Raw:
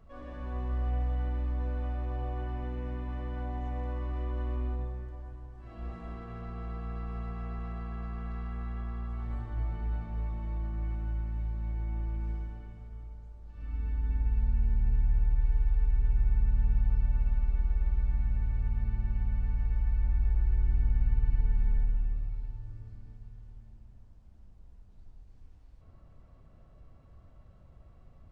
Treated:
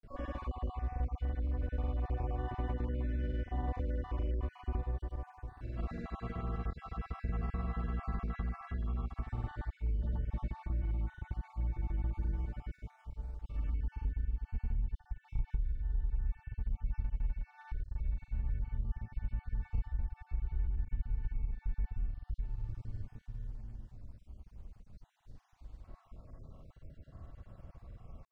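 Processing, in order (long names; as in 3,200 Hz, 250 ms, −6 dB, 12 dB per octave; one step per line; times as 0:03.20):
time-frequency cells dropped at random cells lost 36%
downward compressor 5 to 1, threshold −37 dBFS, peak gain reduction 14.5 dB
granular cloud, pitch spread up and down by 0 semitones
level +6.5 dB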